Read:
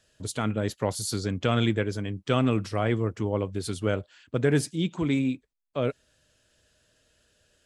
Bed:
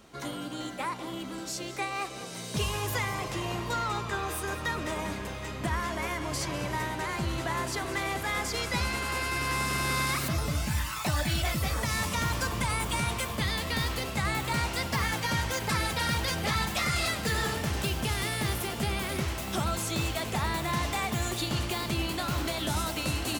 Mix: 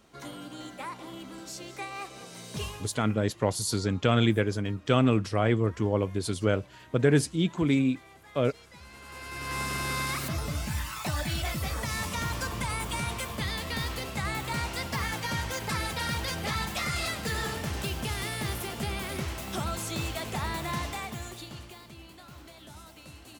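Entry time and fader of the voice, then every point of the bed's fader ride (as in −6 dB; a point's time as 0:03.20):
2.60 s, +1.0 dB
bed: 0:02.65 −5 dB
0:03.01 −21.5 dB
0:08.77 −21.5 dB
0:09.59 −2.5 dB
0:20.76 −2.5 dB
0:21.93 −18 dB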